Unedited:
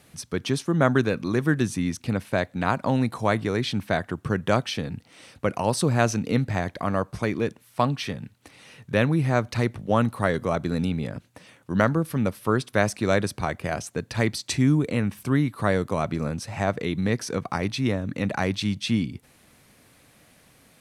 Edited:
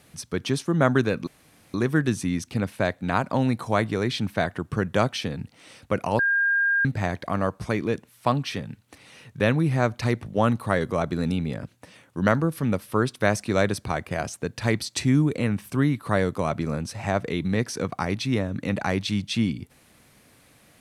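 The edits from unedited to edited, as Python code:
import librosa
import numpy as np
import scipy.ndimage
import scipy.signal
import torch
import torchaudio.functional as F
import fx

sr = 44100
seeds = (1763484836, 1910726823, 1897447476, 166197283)

y = fx.edit(x, sr, fx.insert_room_tone(at_s=1.27, length_s=0.47),
    fx.bleep(start_s=5.72, length_s=0.66, hz=1610.0, db=-18.5), tone=tone)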